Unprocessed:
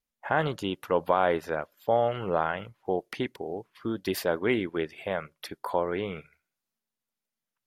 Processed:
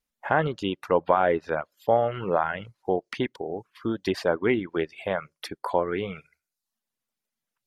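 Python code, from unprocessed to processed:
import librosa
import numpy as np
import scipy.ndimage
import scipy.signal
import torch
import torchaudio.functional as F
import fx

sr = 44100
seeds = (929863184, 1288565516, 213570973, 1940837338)

y = fx.env_lowpass_down(x, sr, base_hz=2400.0, full_db=-22.5)
y = fx.dereverb_blind(y, sr, rt60_s=0.58)
y = F.gain(torch.from_numpy(y), 3.5).numpy()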